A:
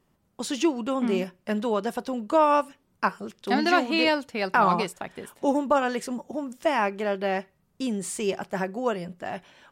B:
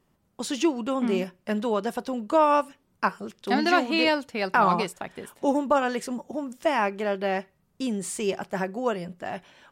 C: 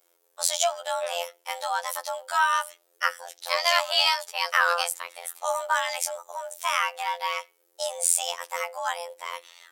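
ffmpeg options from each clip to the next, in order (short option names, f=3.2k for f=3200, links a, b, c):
-af anull
-af "afreqshift=340,afftfilt=real='hypot(re,im)*cos(PI*b)':imag='0':win_size=2048:overlap=0.75,crystalizer=i=6.5:c=0,volume=-2.5dB"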